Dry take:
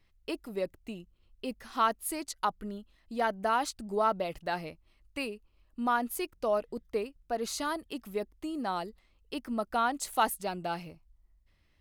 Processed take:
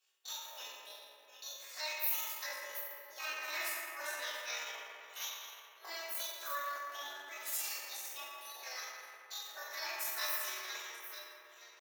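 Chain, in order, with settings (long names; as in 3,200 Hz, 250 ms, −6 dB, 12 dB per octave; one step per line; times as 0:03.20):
delay that plays each chunk backwards 486 ms, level −11.5 dB
gate on every frequency bin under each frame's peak −10 dB weak
spectral tilt +3.5 dB per octave
multi-voice chorus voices 4, 0.24 Hz, delay 26 ms, depth 3.4 ms
high-pass filter 360 Hz 24 dB per octave
convolution reverb RT60 2.7 s, pre-delay 4 ms, DRR −8.5 dB
pitch shifter +5.5 semitones
level −7 dB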